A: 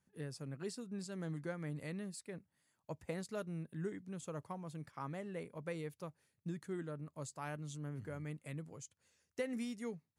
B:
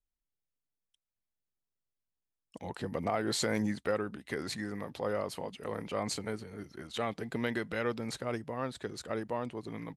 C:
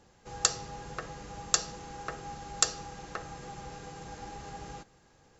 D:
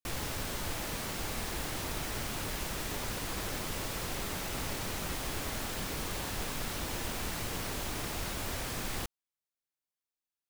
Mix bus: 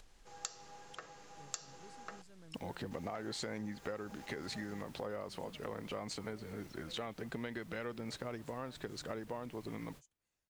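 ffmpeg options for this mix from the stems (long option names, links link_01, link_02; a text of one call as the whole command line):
ffmpeg -i stem1.wav -i stem2.wav -i stem3.wav -i stem4.wav -filter_complex "[0:a]adelay=1200,volume=-16dB[link_01];[1:a]lowpass=7000,acompressor=mode=upward:threshold=-34dB:ratio=2.5,volume=-2.5dB,asplit=2[link_02][link_03];[2:a]highpass=frequency=470:poles=1,volume=-9dB,asplit=3[link_04][link_05][link_06];[link_04]atrim=end=2.22,asetpts=PTS-STARTPTS,afade=type=out:start_time=2.216:duration=0.004:curve=hsin[link_07];[link_05]atrim=start=2.22:end=2.91,asetpts=PTS-STARTPTS,volume=0[link_08];[link_06]atrim=start=2.91,asetpts=PTS-STARTPTS,afade=type=in:duration=0.004:curve=hsin[link_09];[link_07][link_08][link_09]concat=n=3:v=0:a=1[link_10];[3:a]alimiter=level_in=6.5dB:limit=-24dB:level=0:latency=1:release=228,volume=-6.5dB,adelay=2200,volume=-19dB[link_11];[link_03]apad=whole_len=559810[link_12];[link_11][link_12]sidechaingate=range=-33dB:threshold=-51dB:ratio=16:detection=peak[link_13];[link_01][link_02][link_10][link_13]amix=inputs=4:normalize=0,acompressor=threshold=-38dB:ratio=6" out.wav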